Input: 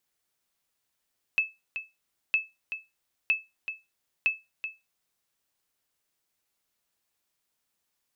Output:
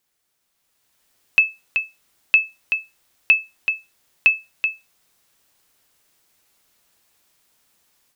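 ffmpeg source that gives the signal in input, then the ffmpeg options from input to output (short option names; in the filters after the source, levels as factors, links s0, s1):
-f lavfi -i "aevalsrc='0.158*(sin(2*PI*2610*mod(t,0.96))*exp(-6.91*mod(t,0.96)/0.22)+0.316*sin(2*PI*2610*max(mod(t,0.96)-0.38,0))*exp(-6.91*max(mod(t,0.96)-0.38,0)/0.22))':d=3.84:s=44100"
-filter_complex "[0:a]asplit=2[s0][s1];[s1]alimiter=level_in=1.5:limit=0.0631:level=0:latency=1:release=166,volume=0.668,volume=0.944[s2];[s0][s2]amix=inputs=2:normalize=0,dynaudnorm=f=540:g=3:m=3.16"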